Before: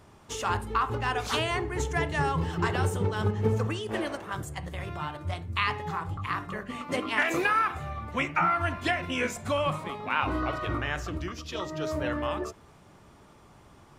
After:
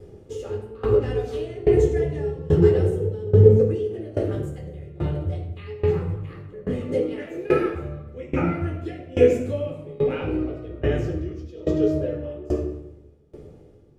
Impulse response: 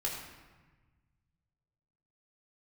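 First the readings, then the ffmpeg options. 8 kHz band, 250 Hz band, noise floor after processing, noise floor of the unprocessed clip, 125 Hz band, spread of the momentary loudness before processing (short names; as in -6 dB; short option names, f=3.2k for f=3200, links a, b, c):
n/a, +8.0 dB, -48 dBFS, -55 dBFS, +8.5 dB, 10 LU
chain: -filter_complex "[0:a]lowshelf=f=680:t=q:w=3:g=12.5[a];[1:a]atrim=start_sample=2205[b];[a][b]afir=irnorm=-1:irlink=0,aeval=exprs='val(0)*pow(10,-22*if(lt(mod(1.2*n/s,1),2*abs(1.2)/1000),1-mod(1.2*n/s,1)/(2*abs(1.2)/1000),(mod(1.2*n/s,1)-2*abs(1.2)/1000)/(1-2*abs(1.2)/1000))/20)':c=same,volume=-3.5dB"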